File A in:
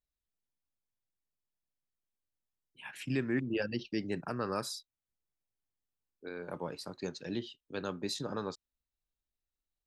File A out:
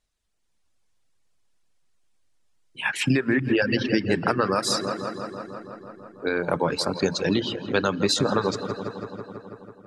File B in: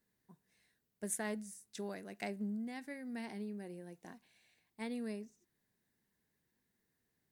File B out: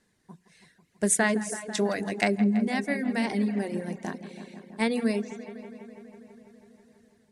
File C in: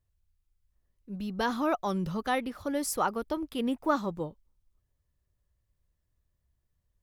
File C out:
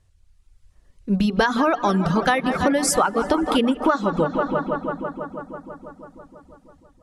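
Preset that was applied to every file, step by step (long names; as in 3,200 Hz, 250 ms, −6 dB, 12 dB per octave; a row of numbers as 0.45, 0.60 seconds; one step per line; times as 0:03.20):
dynamic equaliser 1,600 Hz, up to +4 dB, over −49 dBFS, Q 2.1
low-pass filter 10,000 Hz 24 dB per octave
mains-hum notches 60/120/180/240/300/360/420 Hz
on a send: feedback echo with a low-pass in the loop 164 ms, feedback 79%, low-pass 4,500 Hz, level −12.5 dB
on the sum: dense smooth reverb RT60 2.3 s, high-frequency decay 0.8×, DRR 15.5 dB
downward compressor 16 to 1, threshold −35 dBFS
reverb reduction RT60 0.58 s
automatic gain control gain up to 3.5 dB
normalise the peak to −6 dBFS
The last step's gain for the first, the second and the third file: +15.0, +14.0, +17.0 decibels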